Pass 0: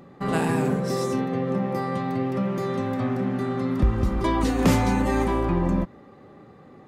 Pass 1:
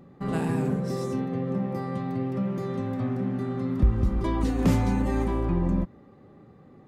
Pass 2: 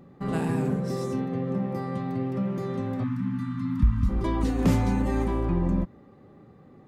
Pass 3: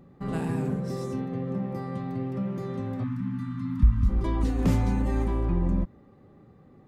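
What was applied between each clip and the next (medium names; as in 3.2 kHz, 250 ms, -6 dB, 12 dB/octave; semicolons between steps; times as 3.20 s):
bass shelf 330 Hz +9 dB; trim -8.5 dB
spectral selection erased 3.04–4.09 s, 320–860 Hz
bass shelf 80 Hz +8.5 dB; trim -3.5 dB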